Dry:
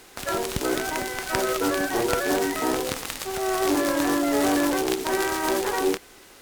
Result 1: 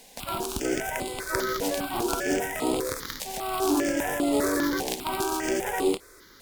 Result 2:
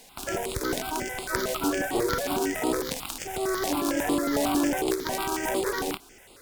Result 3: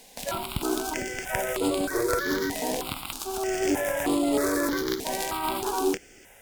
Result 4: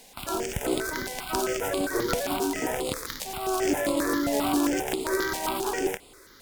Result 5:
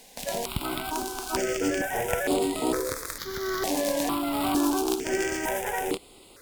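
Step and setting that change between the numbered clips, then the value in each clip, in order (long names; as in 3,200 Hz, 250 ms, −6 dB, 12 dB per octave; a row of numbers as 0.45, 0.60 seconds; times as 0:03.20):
step-sequenced phaser, speed: 5, 11, 3.2, 7.5, 2.2 Hertz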